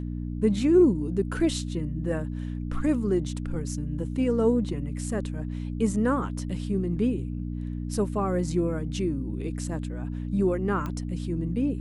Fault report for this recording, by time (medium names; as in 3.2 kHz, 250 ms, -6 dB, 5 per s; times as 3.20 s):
hum 60 Hz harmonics 5 -32 dBFS
10.86 s: pop -20 dBFS